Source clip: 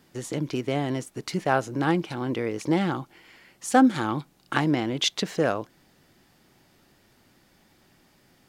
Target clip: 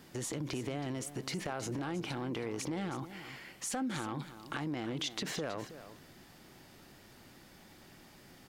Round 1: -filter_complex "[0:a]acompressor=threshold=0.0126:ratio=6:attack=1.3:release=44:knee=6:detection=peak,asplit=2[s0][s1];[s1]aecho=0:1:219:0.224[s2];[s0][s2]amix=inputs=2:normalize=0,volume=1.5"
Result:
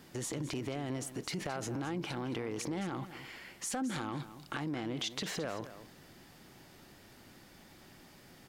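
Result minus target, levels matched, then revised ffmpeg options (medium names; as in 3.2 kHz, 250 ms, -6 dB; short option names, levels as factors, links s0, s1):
echo 102 ms early
-filter_complex "[0:a]acompressor=threshold=0.0126:ratio=6:attack=1.3:release=44:knee=6:detection=peak,asplit=2[s0][s1];[s1]aecho=0:1:321:0.224[s2];[s0][s2]amix=inputs=2:normalize=0,volume=1.5"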